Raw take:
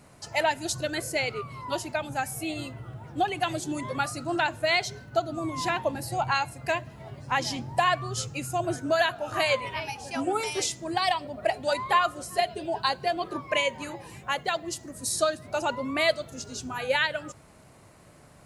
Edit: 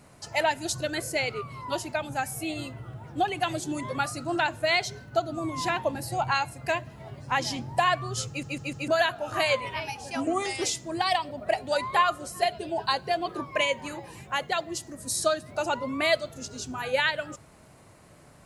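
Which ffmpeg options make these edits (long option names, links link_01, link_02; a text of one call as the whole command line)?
ffmpeg -i in.wav -filter_complex "[0:a]asplit=7[link_01][link_02][link_03][link_04][link_05][link_06][link_07];[link_01]atrim=end=8.432[link_08];[link_02]atrim=start=8.278:end=8.432[link_09];[link_03]atrim=start=8.278:end=8.432[link_10];[link_04]atrim=start=8.278:end=8.432[link_11];[link_05]atrim=start=8.878:end=10.274[link_12];[link_06]atrim=start=10.27:end=10.58,asetpts=PTS-STARTPTS,asetrate=39249,aresample=44100[link_13];[link_07]atrim=start=10.576[link_14];[link_08][link_09]acrossfade=duration=0.004:curve1=hsin:curve2=hsin[link_15];[link_15][link_10]acrossfade=duration=0.004:curve1=hsin:curve2=hsin[link_16];[link_16][link_11]acrossfade=duration=0.004:curve1=hsin:curve2=hsin[link_17];[link_17][link_12]acrossfade=duration=0.004:curve1=hsin:curve2=hsin[link_18];[link_18][link_13]acrossfade=duration=0.004:curve1=hsin:curve2=hsin[link_19];[link_19][link_14]acrossfade=duration=0.004:curve1=hsin:curve2=hsin" out.wav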